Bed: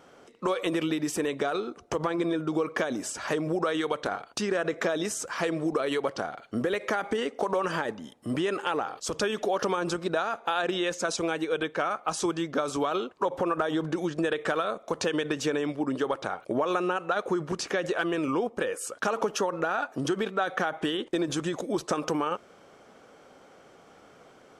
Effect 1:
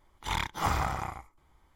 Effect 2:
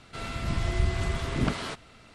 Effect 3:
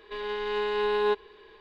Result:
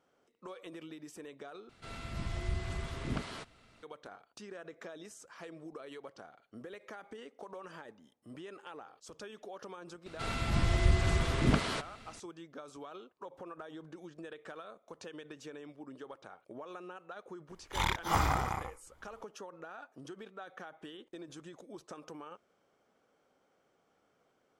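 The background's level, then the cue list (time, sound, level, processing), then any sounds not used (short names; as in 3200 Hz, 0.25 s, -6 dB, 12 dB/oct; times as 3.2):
bed -19.5 dB
1.69 replace with 2 -9.5 dB
10.06 add 2 -0.5 dB
17.49 add 1 -0.5 dB
not used: 3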